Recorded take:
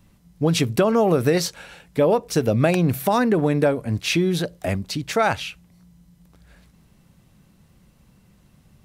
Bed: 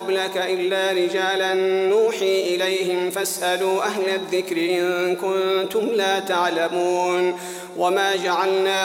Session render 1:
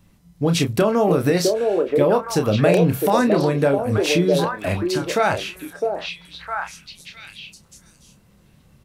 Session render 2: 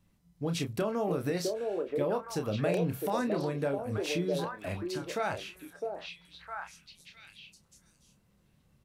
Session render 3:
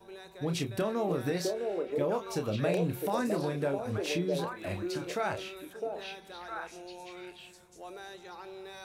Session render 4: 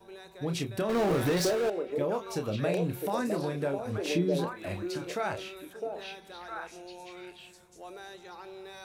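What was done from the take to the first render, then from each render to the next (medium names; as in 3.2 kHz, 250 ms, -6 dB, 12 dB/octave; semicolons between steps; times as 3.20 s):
doubling 29 ms -7.5 dB; on a send: repeats whose band climbs or falls 658 ms, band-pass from 460 Hz, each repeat 1.4 oct, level 0 dB
trim -13.5 dB
add bed -26 dB
0.89–1.70 s: power-law waveshaper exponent 0.5; 4.05–4.51 s: peaking EQ 250 Hz +7.5 dB 1.2 oct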